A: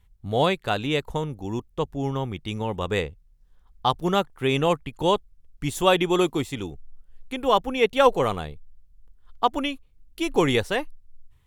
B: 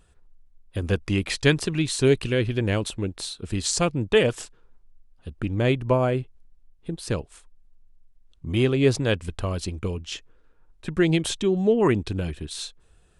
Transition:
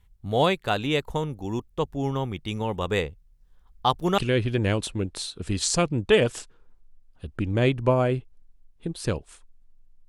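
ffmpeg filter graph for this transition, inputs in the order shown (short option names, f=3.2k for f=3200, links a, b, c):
-filter_complex "[0:a]apad=whole_dur=10.08,atrim=end=10.08,atrim=end=4.182[a];[1:a]atrim=start=2.208:end=8.11[b];[a][b]acrossfade=d=0.004:c1=hsin:c2=hsin"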